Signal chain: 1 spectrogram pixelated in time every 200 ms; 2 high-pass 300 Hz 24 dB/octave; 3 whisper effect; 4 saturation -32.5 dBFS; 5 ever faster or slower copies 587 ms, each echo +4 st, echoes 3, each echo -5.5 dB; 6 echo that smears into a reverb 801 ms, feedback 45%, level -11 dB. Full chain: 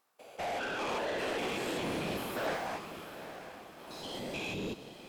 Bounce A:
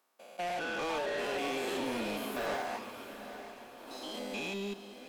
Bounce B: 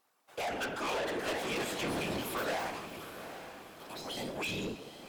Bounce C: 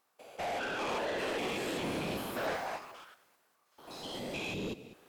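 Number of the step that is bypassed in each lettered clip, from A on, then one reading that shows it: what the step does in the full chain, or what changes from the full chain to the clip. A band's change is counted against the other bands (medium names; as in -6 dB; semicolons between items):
3, 125 Hz band -6.0 dB; 1, 8 kHz band +3.5 dB; 6, echo-to-direct -10.0 dB to none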